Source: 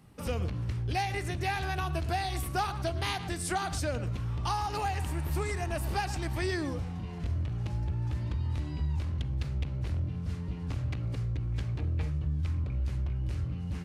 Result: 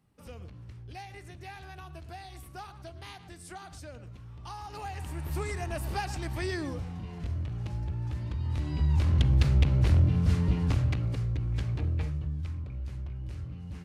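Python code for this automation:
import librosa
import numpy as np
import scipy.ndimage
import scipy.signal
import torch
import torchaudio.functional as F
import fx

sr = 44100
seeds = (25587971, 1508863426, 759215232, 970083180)

y = fx.gain(x, sr, db=fx.line((4.34, -13.0), (5.38, -1.5), (8.33, -1.5), (9.22, 10.0), (10.54, 10.0), (11.17, 2.0), (11.86, 2.0), (12.63, -5.5)))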